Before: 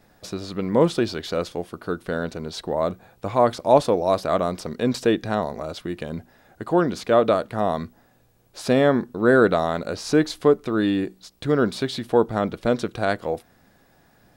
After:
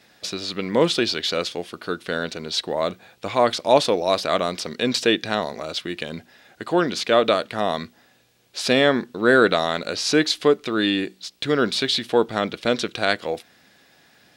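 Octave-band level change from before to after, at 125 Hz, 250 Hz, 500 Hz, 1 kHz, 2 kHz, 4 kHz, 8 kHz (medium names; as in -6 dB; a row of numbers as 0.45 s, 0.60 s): -4.5 dB, -1.5 dB, -0.5 dB, +0.5 dB, +5.5 dB, +11.0 dB, +7.0 dB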